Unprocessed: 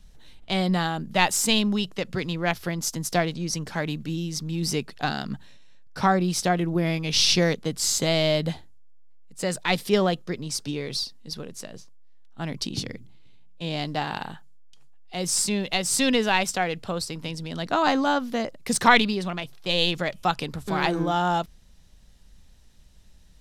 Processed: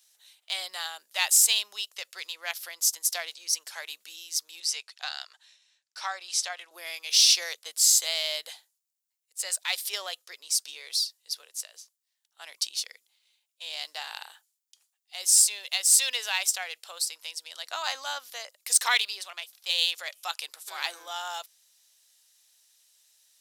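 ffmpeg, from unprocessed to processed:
-filter_complex "[0:a]asettb=1/sr,asplit=3[a][b][c];[a]atrim=end=4.604[d];[b]atrim=start=4.6:end=6.71,asetpts=PTS-STARTPTS,afade=t=in:d=0.004:c=qsin,afade=t=out:st=2.106:d=0.004:c=qsin,highpass=550,lowpass=7.1k[e];[c]atrim=start=6.706[f];[d][e]acrossfade=d=0.004:c1=hsin:c2=qsin[g];[g][f]acrossfade=d=0.004:c1=qsin:c2=hsin,highpass=f=510:w=0.5412,highpass=f=510:w=1.3066,aderivative,volume=5.5dB"

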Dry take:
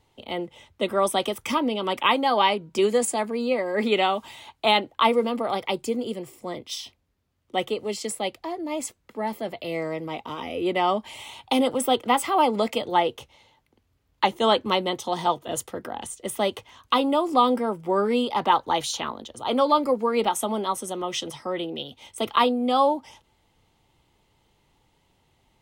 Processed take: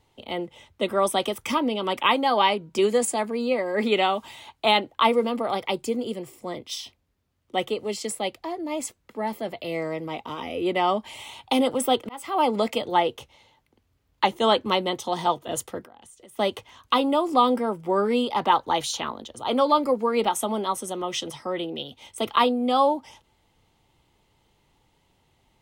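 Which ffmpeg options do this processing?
-filter_complex "[0:a]asettb=1/sr,asplit=3[a][b][c];[a]atrim=end=15.834[d];[b]atrim=start=15.83:end=16.39,asetpts=PTS-STARTPTS,afade=t=in:d=0.004:c=qsin,afade=t=out:st=0.556:d=0.004:c=qsin,acompressor=threshold=-46dB:ratio=8:attack=3.2:release=140:knee=1:detection=peak[e];[c]atrim=start=16.386[f];[d][e]acrossfade=d=0.004:c1=hsin:c2=qsin[g];[g][f]acrossfade=d=0.004:c1=qsin:c2=hsin,asplit=2[h][i];[h]atrim=end=12.09,asetpts=PTS-STARTPTS,afade=t=out:st=12.086:d=0.004:c=hsin[j];[i]atrim=start=12.09,asetpts=PTS-STARTPTS,afade=t=in:d=0.4[k];[j][k]concat=n=2:v=0:a=1"

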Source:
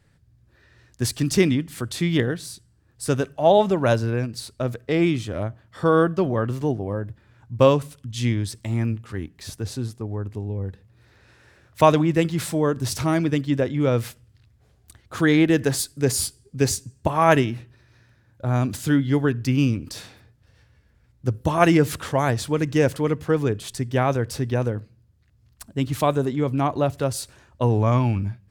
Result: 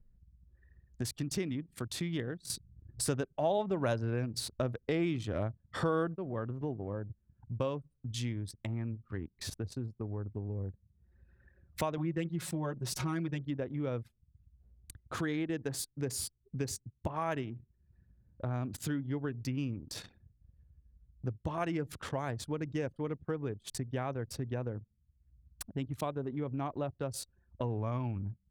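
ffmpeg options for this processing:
-filter_complex "[0:a]asettb=1/sr,asplit=3[a][b][c];[a]atrim=end=11.974[d];[b]atrim=start=11.97:end=13.45,asetpts=PTS-STARTPTS,afade=t=in:d=0.004:c=qsin,afade=t=out:st=1.476:d=0.004:c=qsin,aecho=1:1:5.5:0.91,atrim=end_sample=65268[e];[c]atrim=start=13.446[f];[d][e]acrossfade=d=0.004:c1=hsin:c2=qsin[g];[g][f]acrossfade=d=0.004:c1=qsin:c2=hsin,asplit=3[h][i][j];[h]atrim=end=2.502[k];[i]atrim=start=2.498:end=6.162,asetpts=PTS-STARTPTS,volume=11dB[l];[j]atrim=start=6.158[m];[k][l]acrossfade=d=0.004:c1=hsin:c2=hsin[n];[n][m]acrossfade=d=0.004:c1=hsin:c2=hsin,acompressor=threshold=-38dB:ratio=3,anlmdn=0.158,acompressor=mode=upward:threshold=-52dB:ratio=2.5"

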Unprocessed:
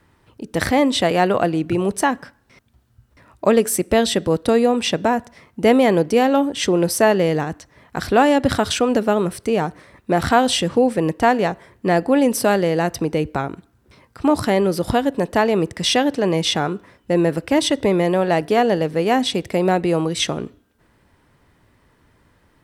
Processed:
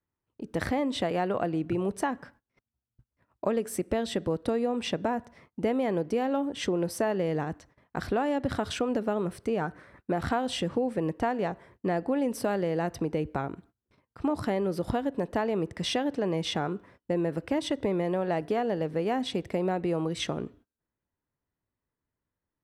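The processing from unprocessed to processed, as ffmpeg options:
-filter_complex "[0:a]asettb=1/sr,asplit=3[a][b][c];[a]atrim=end=9.614[d];[b]atrim=start=9.61:end=10.12,asetpts=PTS-STARTPTS,afade=t=in:d=0.004:c=qsin,afade=t=out:st=0.506:d=0.004:c=qsin,equalizer=f=1.5k:w=4.6:g=10[e];[c]atrim=start=10.116[f];[d][e]acrossfade=d=0.004:c1=hsin:c2=qsin[g];[g][f]acrossfade=d=0.004:c1=qsin:c2=hsin,agate=range=-24dB:threshold=-47dB:ratio=16:detection=peak,highshelf=f=2.9k:g=-9.5,acompressor=threshold=-18dB:ratio=4,volume=-6.5dB"

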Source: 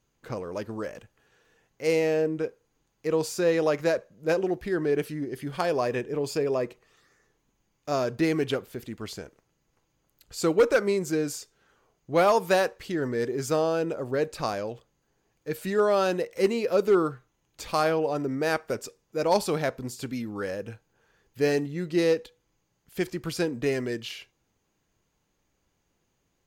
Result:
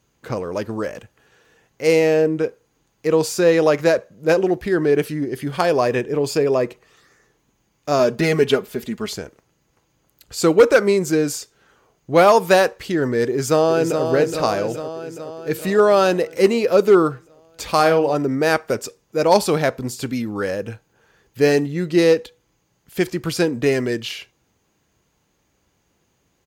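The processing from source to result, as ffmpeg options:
-filter_complex "[0:a]asettb=1/sr,asplit=3[a][b][c];[a]atrim=end=7.994[d];[b]atrim=start=7.99:end=9.16,asetpts=PTS-STARTPTS,afade=t=in:d=0.004:c=qsin,afade=t=out:st=1.166:d=0.004:c=qsin,aecho=1:1:4.8:0.65,atrim=end_sample=51597[e];[c]atrim=start=9.156[f];[d][e]acrossfade=d=0.004:c1=hsin:c2=qsin[g];[g][f]acrossfade=d=0.004:c1=qsin:c2=hsin,asplit=2[h][i];[i]afade=t=in:st=13.26:d=0.01,afade=t=out:st=14.04:d=0.01,aecho=0:1:420|840|1260|1680|2100|2520|2940|3360|3780:0.473151|0.307548|0.199906|0.129939|0.0844605|0.0548993|0.0356845|0.023195|0.0150767[j];[h][j]amix=inputs=2:normalize=0,asettb=1/sr,asplit=3[k][l][m];[k]atrim=end=17.754[n];[l]atrim=start=17.75:end=18.15,asetpts=PTS-STARTPTS,afade=t=in:d=0.004:c=qsin,afade=t=out:st=0.396:d=0.004:c=qsin,asplit=2[o][p];[p]adelay=48,volume=-10dB[q];[o][q]amix=inputs=2:normalize=0,atrim=end_sample=17640[r];[m]atrim=start=18.146[s];[n][r]acrossfade=d=0.004:c1=hsin:c2=qsin[t];[t][s]acrossfade=d=0.004:c1=qsin:c2=hsin,highpass=44,volume=8.5dB"

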